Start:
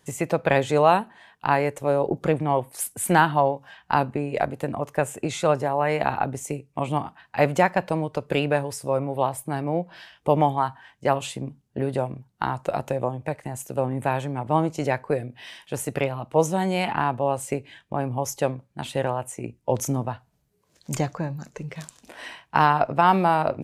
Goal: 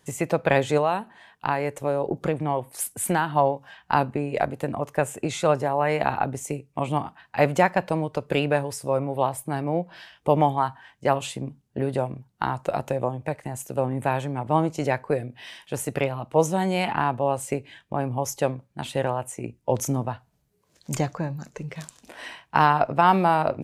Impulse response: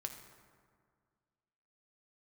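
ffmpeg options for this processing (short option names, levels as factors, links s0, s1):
-filter_complex "[0:a]asettb=1/sr,asplit=3[s0][s1][s2];[s0]atrim=end=0.774[s3];[s1]atrim=start=0.77:end=3.36,asetpts=PTS-STARTPTS,afade=t=in:d=0.004:c=qsin,afade=t=out:st=2.586:d=0.004:c=qsin,acompressor=threshold=0.0891:ratio=2.5[s4];[s2]atrim=start=3.356[s5];[s3][s4]acrossfade=d=0.004:c1=hsin:c2=qsin[s6];[s6][s5]acrossfade=d=0.004:c1=qsin:c2=hsin"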